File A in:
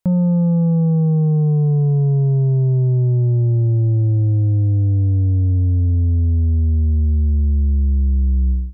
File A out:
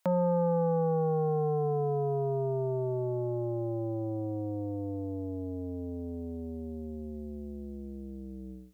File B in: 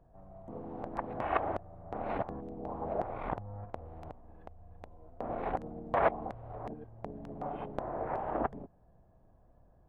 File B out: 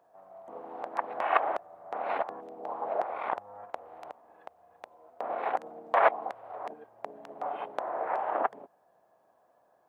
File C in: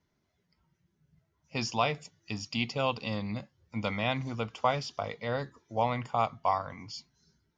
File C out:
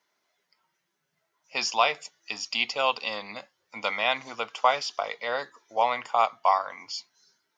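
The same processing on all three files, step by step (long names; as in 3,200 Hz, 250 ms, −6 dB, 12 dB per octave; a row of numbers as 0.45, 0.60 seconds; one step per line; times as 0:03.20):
high-pass filter 670 Hz 12 dB per octave
level +7.5 dB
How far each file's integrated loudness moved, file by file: −16.0, +5.0, +5.0 LU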